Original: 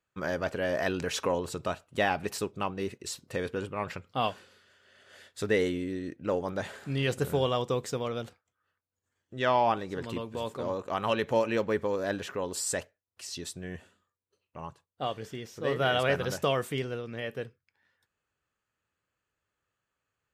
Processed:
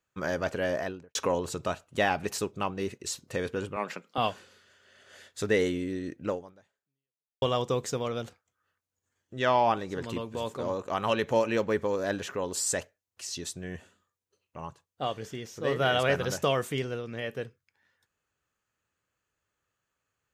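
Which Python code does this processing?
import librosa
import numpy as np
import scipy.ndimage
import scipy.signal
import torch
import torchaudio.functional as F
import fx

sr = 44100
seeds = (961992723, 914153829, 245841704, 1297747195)

y = fx.studio_fade_out(x, sr, start_s=0.63, length_s=0.52)
y = fx.steep_highpass(y, sr, hz=180.0, slope=36, at=(3.76, 4.18))
y = fx.edit(y, sr, fx.fade_out_span(start_s=6.28, length_s=1.14, curve='exp'), tone=tone)
y = fx.peak_eq(y, sr, hz=6500.0, db=5.0, octaves=0.36)
y = y * librosa.db_to_amplitude(1.0)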